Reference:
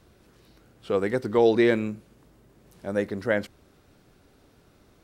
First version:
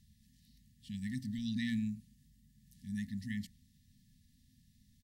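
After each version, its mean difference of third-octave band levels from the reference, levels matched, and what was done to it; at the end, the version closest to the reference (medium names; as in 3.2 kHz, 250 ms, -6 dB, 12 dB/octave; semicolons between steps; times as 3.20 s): 13.5 dB: hum notches 60/120/180/240 Hz; FFT band-reject 260–1700 Hz; peaking EQ 2.3 kHz -14 dB 0.75 oct; speakerphone echo 110 ms, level -26 dB; trim -5 dB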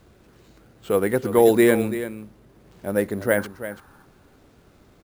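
4.0 dB: time-frequency box 3.38–4.05 s, 760–1800 Hz +11 dB; treble shelf 6.2 kHz -6.5 dB; delay 335 ms -12 dB; careless resampling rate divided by 4×, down none, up hold; trim +4 dB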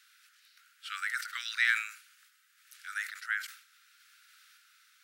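21.5 dB: steep high-pass 1.3 kHz 96 dB/octave; dynamic bell 3.3 kHz, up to -7 dB, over -46 dBFS, Q 0.75; random-step tremolo; decay stretcher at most 110 dB/s; trim +7.5 dB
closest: second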